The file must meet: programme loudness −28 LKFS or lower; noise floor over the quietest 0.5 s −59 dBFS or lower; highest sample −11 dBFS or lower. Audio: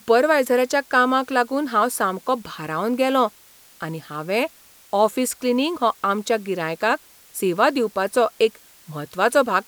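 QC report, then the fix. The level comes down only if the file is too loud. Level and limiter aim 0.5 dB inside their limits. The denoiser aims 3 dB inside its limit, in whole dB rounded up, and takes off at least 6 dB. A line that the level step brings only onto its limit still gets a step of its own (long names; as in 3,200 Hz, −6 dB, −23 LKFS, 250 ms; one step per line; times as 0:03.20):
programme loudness −21.0 LKFS: out of spec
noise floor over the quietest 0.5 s −50 dBFS: out of spec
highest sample −3.5 dBFS: out of spec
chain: broadband denoise 6 dB, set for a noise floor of −50 dBFS
level −7.5 dB
brickwall limiter −11.5 dBFS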